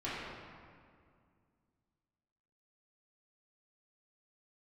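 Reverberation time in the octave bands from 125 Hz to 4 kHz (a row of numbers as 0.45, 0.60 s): 2.8, 2.8, 2.2, 2.1, 1.8, 1.3 s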